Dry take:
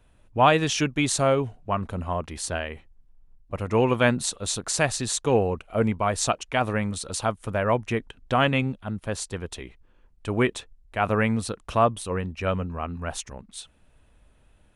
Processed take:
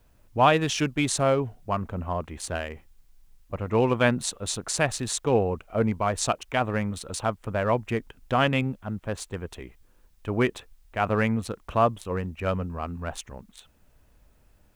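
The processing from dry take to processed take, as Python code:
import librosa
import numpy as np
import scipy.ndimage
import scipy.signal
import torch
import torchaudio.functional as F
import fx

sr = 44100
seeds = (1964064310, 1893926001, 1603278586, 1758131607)

y = fx.wiener(x, sr, points=9)
y = fx.quant_dither(y, sr, seeds[0], bits=12, dither='triangular')
y = F.gain(torch.from_numpy(y), -1.0).numpy()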